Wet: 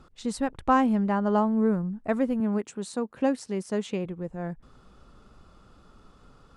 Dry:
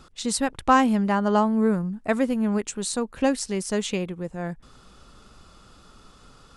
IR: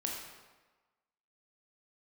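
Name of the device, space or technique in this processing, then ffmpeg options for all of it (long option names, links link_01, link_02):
through cloth: -filter_complex "[0:a]highshelf=frequency=2200:gain=-12,asettb=1/sr,asplit=3[link_01][link_02][link_03];[link_01]atrim=end=2.404[link_04];[link_02]atrim=start=2.4:end=4.05,asetpts=PTS-STARTPTS,afade=type=in:duration=0.004:curve=qsin,afade=type=out:start_time=1.646:duration=0.004:curve=qsin,highpass=130[link_05];[link_03]atrim=start=4.046[link_06];[link_04][link_05]acrossfade=duration=0.004:curve1=hsin:curve2=qsin[link_07];[link_07][link_06]acrossfade=duration=0.004:curve1=qsin:curve2=hsin,volume=-2dB"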